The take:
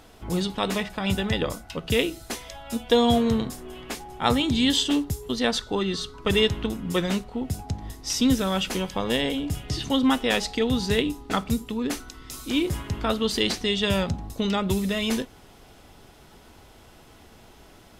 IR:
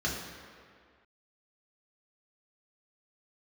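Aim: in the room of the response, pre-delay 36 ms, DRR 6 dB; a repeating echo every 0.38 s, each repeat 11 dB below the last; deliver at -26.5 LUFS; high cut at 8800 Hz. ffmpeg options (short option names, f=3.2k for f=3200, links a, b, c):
-filter_complex "[0:a]lowpass=8.8k,aecho=1:1:380|760|1140:0.282|0.0789|0.0221,asplit=2[a][b];[1:a]atrim=start_sample=2205,adelay=36[c];[b][c]afir=irnorm=-1:irlink=0,volume=-14dB[d];[a][d]amix=inputs=2:normalize=0,volume=-3dB"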